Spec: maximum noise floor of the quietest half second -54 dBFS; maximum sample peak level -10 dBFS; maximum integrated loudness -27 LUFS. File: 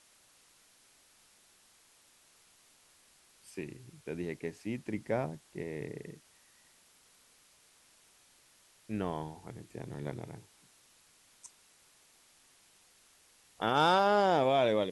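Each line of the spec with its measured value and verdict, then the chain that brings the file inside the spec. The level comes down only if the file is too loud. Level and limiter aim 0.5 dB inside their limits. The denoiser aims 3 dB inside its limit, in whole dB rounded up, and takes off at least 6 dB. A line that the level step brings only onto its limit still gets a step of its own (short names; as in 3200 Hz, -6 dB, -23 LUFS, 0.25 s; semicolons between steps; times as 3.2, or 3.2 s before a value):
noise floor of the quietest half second -65 dBFS: OK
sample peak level -14.5 dBFS: OK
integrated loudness -32.5 LUFS: OK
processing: none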